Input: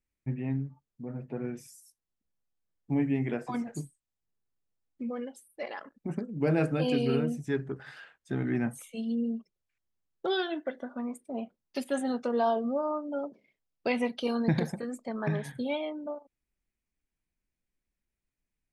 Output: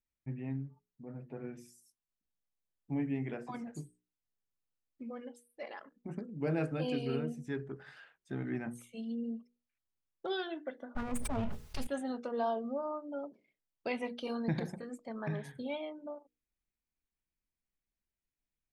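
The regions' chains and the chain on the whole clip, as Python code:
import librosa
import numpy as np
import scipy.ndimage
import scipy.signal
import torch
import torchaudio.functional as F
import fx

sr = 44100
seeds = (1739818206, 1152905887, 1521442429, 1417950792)

y = fx.chain(x, sr, fx.lower_of_two(delay_ms=4.7),
    fx.low_shelf_res(hz=160.0, db=12.5, q=1.5),
    fx.env_flatten(amount_pct=100), at=(10.95, 11.87))
y = fx.high_shelf(y, sr, hz=8100.0, db=-5.0)
y = fx.hum_notches(y, sr, base_hz=60, count=8)
y = F.gain(torch.from_numpy(y), -6.5).numpy()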